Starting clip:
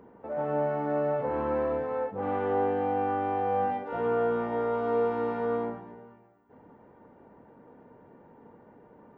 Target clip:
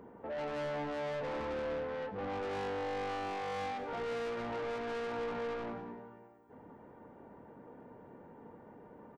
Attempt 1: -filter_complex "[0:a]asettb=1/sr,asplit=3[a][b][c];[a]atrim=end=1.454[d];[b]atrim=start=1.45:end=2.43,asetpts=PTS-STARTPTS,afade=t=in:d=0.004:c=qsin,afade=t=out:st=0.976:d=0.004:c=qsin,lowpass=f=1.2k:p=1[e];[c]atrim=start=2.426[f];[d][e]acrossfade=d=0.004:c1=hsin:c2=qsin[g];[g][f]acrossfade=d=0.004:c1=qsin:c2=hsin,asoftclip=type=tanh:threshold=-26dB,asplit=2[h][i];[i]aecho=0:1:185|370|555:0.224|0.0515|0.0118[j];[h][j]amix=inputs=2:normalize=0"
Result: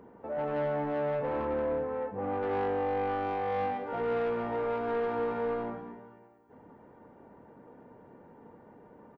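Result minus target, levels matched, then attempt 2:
soft clip: distortion -8 dB
-filter_complex "[0:a]asettb=1/sr,asplit=3[a][b][c];[a]atrim=end=1.454[d];[b]atrim=start=1.45:end=2.43,asetpts=PTS-STARTPTS,afade=t=in:d=0.004:c=qsin,afade=t=out:st=0.976:d=0.004:c=qsin,lowpass=f=1.2k:p=1[e];[c]atrim=start=2.426[f];[d][e]acrossfade=d=0.004:c1=hsin:c2=qsin[g];[g][f]acrossfade=d=0.004:c1=qsin:c2=hsin,asoftclip=type=tanh:threshold=-36dB,asplit=2[h][i];[i]aecho=0:1:185|370|555:0.224|0.0515|0.0118[j];[h][j]amix=inputs=2:normalize=0"

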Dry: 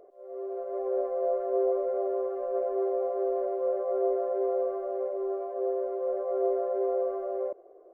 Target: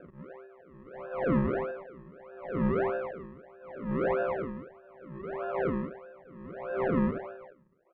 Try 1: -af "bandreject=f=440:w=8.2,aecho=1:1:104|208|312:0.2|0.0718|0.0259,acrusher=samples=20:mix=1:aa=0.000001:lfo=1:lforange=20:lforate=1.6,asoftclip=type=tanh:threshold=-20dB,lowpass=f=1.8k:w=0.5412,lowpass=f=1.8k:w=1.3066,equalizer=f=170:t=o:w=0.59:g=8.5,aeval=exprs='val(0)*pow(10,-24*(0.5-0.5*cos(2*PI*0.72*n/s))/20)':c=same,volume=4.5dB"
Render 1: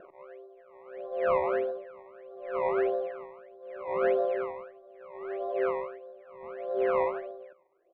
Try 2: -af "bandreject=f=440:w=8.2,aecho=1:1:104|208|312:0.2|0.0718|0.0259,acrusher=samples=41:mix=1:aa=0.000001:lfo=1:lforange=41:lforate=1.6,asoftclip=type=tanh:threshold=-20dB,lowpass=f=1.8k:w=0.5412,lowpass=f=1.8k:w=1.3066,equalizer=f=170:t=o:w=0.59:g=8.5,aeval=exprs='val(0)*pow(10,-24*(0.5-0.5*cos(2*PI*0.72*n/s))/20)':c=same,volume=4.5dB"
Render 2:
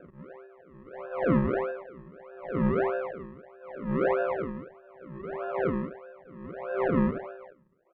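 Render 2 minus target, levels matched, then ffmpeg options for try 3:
soft clip: distortion -9 dB
-af "bandreject=f=440:w=8.2,aecho=1:1:104|208|312:0.2|0.0718|0.0259,acrusher=samples=41:mix=1:aa=0.000001:lfo=1:lforange=41:lforate=1.6,asoftclip=type=tanh:threshold=-27dB,lowpass=f=1.8k:w=0.5412,lowpass=f=1.8k:w=1.3066,equalizer=f=170:t=o:w=0.59:g=8.5,aeval=exprs='val(0)*pow(10,-24*(0.5-0.5*cos(2*PI*0.72*n/s))/20)':c=same,volume=4.5dB"

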